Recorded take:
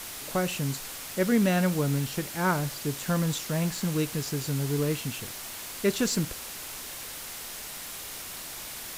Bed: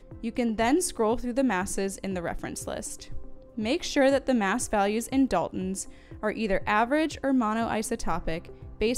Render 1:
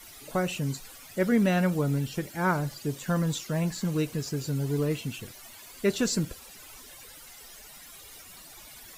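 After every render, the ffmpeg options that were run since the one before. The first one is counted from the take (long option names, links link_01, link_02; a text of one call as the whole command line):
ffmpeg -i in.wav -af "afftdn=noise_reduction=14:noise_floor=-40" out.wav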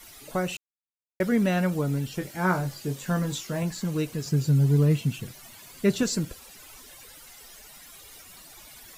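ffmpeg -i in.wav -filter_complex "[0:a]asettb=1/sr,asplit=3[link_01][link_02][link_03];[link_01]atrim=end=2.194[link_04];[link_02]atrim=start=2.19:end=3.63,asetpts=PTS-STARTPTS,afade=type=in:duration=0.004:curve=qsin,afade=type=out:start_time=1.436:duration=0.004:curve=qsin,asplit=2[link_05][link_06];[link_06]adelay=22,volume=-6dB[link_07];[link_05][link_07]amix=inputs=2:normalize=0,atrim=end_sample=63504[link_08];[link_03]atrim=start=3.626[link_09];[link_04][link_08]acrossfade=duration=0.004:curve1=hsin:curve2=qsin[link_10];[link_10][link_09]acrossfade=duration=0.004:curve1=qsin:curve2=hsin,asettb=1/sr,asplit=3[link_11][link_12][link_13];[link_11]atrim=end=4.234[link_14];[link_12]atrim=start=4.23:end=6.03,asetpts=PTS-STARTPTS,afade=type=in:duration=0.004:curve=qsin,afade=type=out:start_time=1.796:duration=0.004:curve=qsin,equalizer=frequency=150:width=1.5:gain=10.5[link_15];[link_13]atrim=start=6.026[link_16];[link_14][link_15]acrossfade=duration=0.004:curve1=hsin:curve2=qsin[link_17];[link_17][link_16]acrossfade=duration=0.004:curve1=qsin:curve2=hsin,asplit=3[link_18][link_19][link_20];[link_18]atrim=end=0.57,asetpts=PTS-STARTPTS,afade=type=out:start_time=0.566:duration=0.004:curve=hsin[link_21];[link_19]atrim=start=0.57:end=1.2,asetpts=PTS-STARTPTS,volume=0[link_22];[link_20]atrim=start=1.2,asetpts=PTS-STARTPTS,afade=type=in:duration=0.004:curve=hsin[link_23];[link_21][link_22][link_23]concat=n=3:v=0:a=1" out.wav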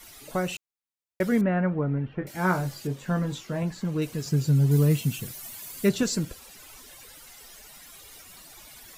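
ffmpeg -i in.wav -filter_complex "[0:a]asettb=1/sr,asplit=3[link_01][link_02][link_03];[link_01]atrim=end=1.414[link_04];[link_02]atrim=start=1.41:end=2.27,asetpts=PTS-STARTPTS,afade=type=in:duration=0.004:curve=qsin,afade=type=out:start_time=0.856:duration=0.004:curve=qsin,lowpass=frequency=2000:width=0.5412,lowpass=frequency=2000:width=1.3066[link_05];[link_03]atrim=start=2.266[link_06];[link_04][link_05]acrossfade=duration=0.004:curve1=hsin:curve2=qsin[link_07];[link_07][link_06]acrossfade=duration=0.004:curve1=qsin:curve2=hsin,asettb=1/sr,asplit=3[link_08][link_09][link_10];[link_08]atrim=end=2.874[link_11];[link_09]atrim=start=2.87:end=4.02,asetpts=PTS-STARTPTS,afade=type=in:duration=0.004:curve=qsin,afade=type=out:start_time=1.146:duration=0.004:curve=qsin,highshelf=frequency=4100:gain=-11.5[link_12];[link_10]atrim=start=4.016[link_13];[link_11][link_12]acrossfade=duration=0.004:curve1=hsin:curve2=qsin[link_14];[link_14][link_13]acrossfade=duration=0.004:curve1=qsin:curve2=hsin,asettb=1/sr,asplit=3[link_15][link_16][link_17];[link_15]atrim=end=4.714[link_18];[link_16]atrim=start=4.71:end=5.89,asetpts=PTS-STARTPTS,afade=type=in:duration=0.004:curve=qsin,afade=type=out:start_time=1.176:duration=0.004:curve=qsin,highshelf=frequency=7500:gain=12[link_19];[link_17]atrim=start=5.886[link_20];[link_18][link_19]acrossfade=duration=0.004:curve1=hsin:curve2=qsin[link_21];[link_21][link_20]acrossfade=duration=0.004:curve1=qsin:curve2=hsin" out.wav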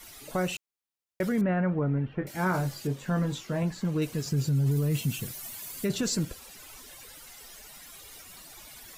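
ffmpeg -i in.wav -af "alimiter=limit=-19.5dB:level=0:latency=1:release=11" out.wav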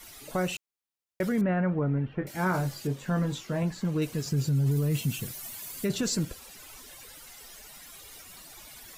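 ffmpeg -i in.wav -af anull out.wav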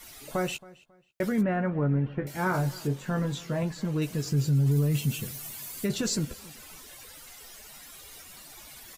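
ffmpeg -i in.wav -filter_complex "[0:a]asplit=2[link_01][link_02];[link_02]adelay=14,volume=-10.5dB[link_03];[link_01][link_03]amix=inputs=2:normalize=0,asplit=2[link_04][link_05];[link_05]adelay=272,lowpass=frequency=4200:poles=1,volume=-21dB,asplit=2[link_06][link_07];[link_07]adelay=272,lowpass=frequency=4200:poles=1,volume=0.29[link_08];[link_04][link_06][link_08]amix=inputs=3:normalize=0" out.wav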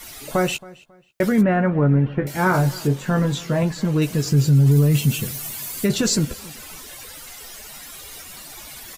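ffmpeg -i in.wav -af "volume=9dB" out.wav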